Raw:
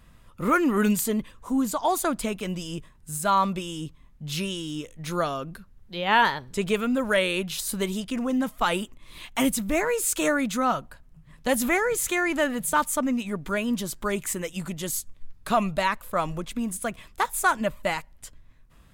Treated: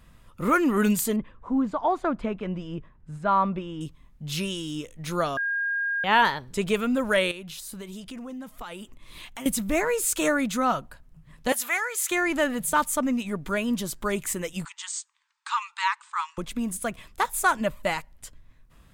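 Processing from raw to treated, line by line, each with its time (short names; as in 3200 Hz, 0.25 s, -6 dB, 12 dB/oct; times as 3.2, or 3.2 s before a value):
1.16–3.81 LPF 1800 Hz
5.37–6.04 bleep 1620 Hz -24 dBFS
7.31–9.46 compressor 4:1, threshold -37 dBFS
11.52–12.11 HPF 1000 Hz
14.65–16.38 brick-wall FIR band-pass 830–8900 Hz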